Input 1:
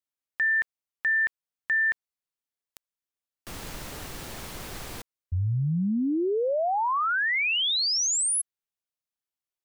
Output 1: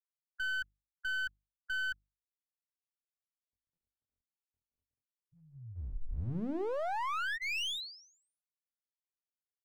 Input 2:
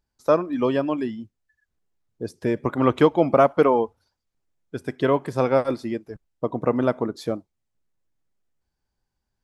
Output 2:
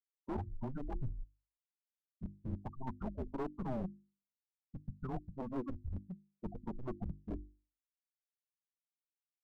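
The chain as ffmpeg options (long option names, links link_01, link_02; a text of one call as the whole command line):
ffmpeg -i in.wav -af "bandreject=frequency=2200:width=5.8,afftfilt=real='re*gte(hypot(re,im),0.158)':imag='im*gte(hypot(re,im),0.158)':win_size=1024:overlap=0.75,highpass=94,highpass=frequency=240:width_type=q:width=0.5412,highpass=frequency=240:width_type=q:width=1.307,lowpass=frequency=3300:width_type=q:width=0.5176,lowpass=frequency=3300:width_type=q:width=0.7071,lowpass=frequency=3300:width_type=q:width=1.932,afreqshift=-260,areverse,acompressor=threshold=-28dB:ratio=16:attack=1:release=844:knee=6:detection=peak,areverse,aeval=exprs='clip(val(0),-1,0.0141)':channel_layout=same,bandreject=frequency=50:width_type=h:width=6,bandreject=frequency=100:width_type=h:width=6,bandreject=frequency=150:width_type=h:width=6,bandreject=frequency=200:width_type=h:width=6,bandreject=frequency=250:width_type=h:width=6,bandreject=frequency=300:width_type=h:width=6,bandreject=frequency=350:width_type=h:width=6,volume=-1.5dB" out.wav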